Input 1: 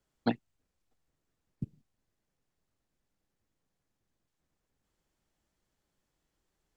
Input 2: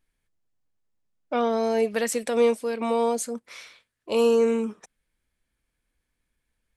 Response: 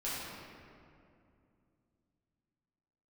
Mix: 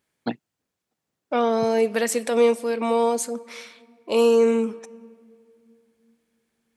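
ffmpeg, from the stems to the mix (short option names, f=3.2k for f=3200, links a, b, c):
-filter_complex "[0:a]volume=2dB[a];[1:a]volume=2.5dB,asplit=2[b][c];[c]volume=-23dB[d];[2:a]atrim=start_sample=2205[e];[d][e]afir=irnorm=-1:irlink=0[f];[a][b][f]amix=inputs=3:normalize=0,highpass=140"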